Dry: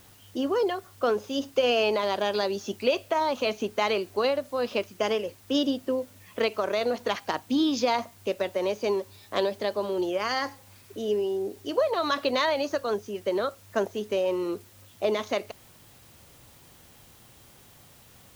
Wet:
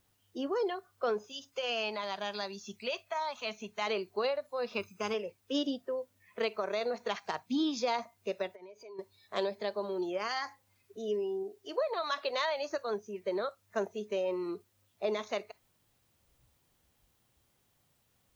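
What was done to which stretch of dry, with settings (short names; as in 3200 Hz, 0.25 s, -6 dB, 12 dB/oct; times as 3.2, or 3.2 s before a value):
1.32–3.87 bell 400 Hz -9.5 dB 1.3 oct
4.74–5.14 comb 0.8 ms, depth 54%
8.47–8.99 compressor 12:1, threshold -38 dBFS
11.43–12.62 low shelf 270 Hz -6 dB
whole clip: spectral noise reduction 13 dB; gain -6.5 dB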